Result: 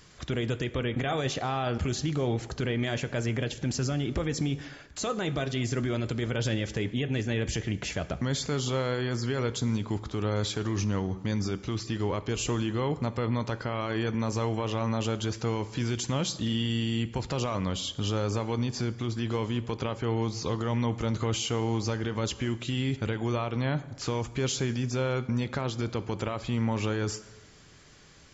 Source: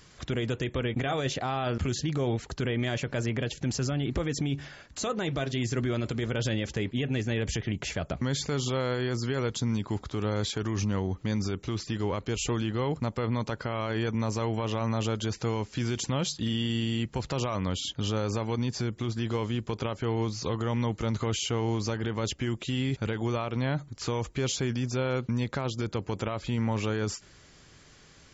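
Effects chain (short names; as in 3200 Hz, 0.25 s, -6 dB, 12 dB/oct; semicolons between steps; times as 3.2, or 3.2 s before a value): plate-style reverb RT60 1.2 s, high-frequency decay 0.7×, DRR 13 dB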